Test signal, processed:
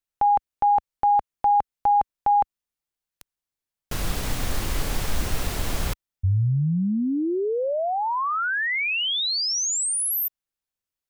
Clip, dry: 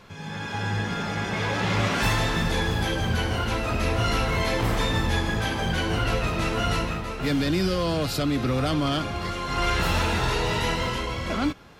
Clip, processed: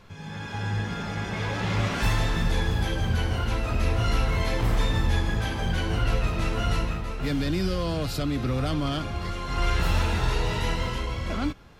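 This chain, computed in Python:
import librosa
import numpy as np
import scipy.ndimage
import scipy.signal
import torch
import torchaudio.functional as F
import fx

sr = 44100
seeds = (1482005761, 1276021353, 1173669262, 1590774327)

y = fx.low_shelf(x, sr, hz=85.0, db=12.0)
y = y * librosa.db_to_amplitude(-4.5)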